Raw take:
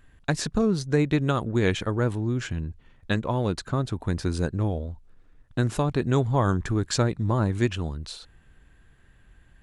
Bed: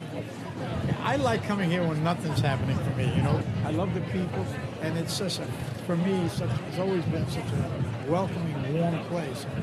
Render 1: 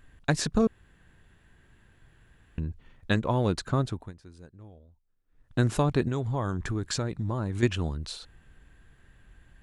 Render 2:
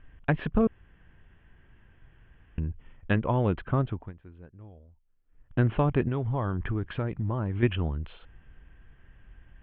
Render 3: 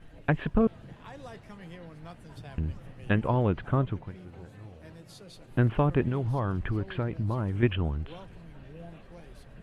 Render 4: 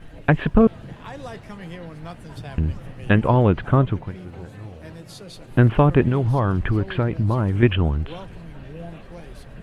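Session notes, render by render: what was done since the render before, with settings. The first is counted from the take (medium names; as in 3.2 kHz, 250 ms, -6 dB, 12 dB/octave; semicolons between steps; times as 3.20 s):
0.67–2.58 s: room tone; 3.81–5.58 s: dip -23 dB, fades 0.32 s; 6.08–7.63 s: compression 2.5:1, threshold -28 dBFS
Chebyshev low-pass 3.2 kHz, order 6; bass shelf 82 Hz +6 dB
add bed -19.5 dB
trim +9 dB; peak limiter -2 dBFS, peak gain reduction 1.5 dB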